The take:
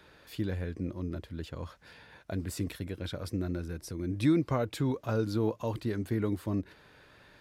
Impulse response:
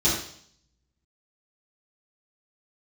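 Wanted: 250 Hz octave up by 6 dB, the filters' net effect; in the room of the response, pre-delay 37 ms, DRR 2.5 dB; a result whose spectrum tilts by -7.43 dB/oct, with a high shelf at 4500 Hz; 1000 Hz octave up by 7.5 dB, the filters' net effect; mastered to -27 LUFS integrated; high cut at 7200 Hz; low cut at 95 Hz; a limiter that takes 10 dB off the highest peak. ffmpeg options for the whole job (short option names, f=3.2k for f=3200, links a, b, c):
-filter_complex "[0:a]highpass=95,lowpass=7.2k,equalizer=f=250:t=o:g=7.5,equalizer=f=1k:t=o:g=8.5,highshelf=f=4.5k:g=7,alimiter=limit=-19.5dB:level=0:latency=1,asplit=2[a][b];[1:a]atrim=start_sample=2205,adelay=37[c];[b][c]afir=irnorm=-1:irlink=0,volume=-16dB[d];[a][d]amix=inputs=2:normalize=0,volume=-1.5dB"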